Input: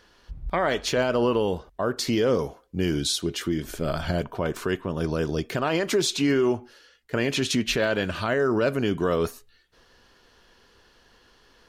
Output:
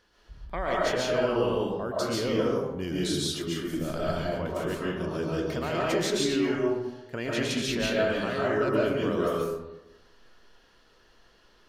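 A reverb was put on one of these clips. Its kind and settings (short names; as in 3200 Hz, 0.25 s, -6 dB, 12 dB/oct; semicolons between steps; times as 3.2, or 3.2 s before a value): digital reverb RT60 1 s, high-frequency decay 0.5×, pre-delay 0.1 s, DRR -5.5 dB; gain -9 dB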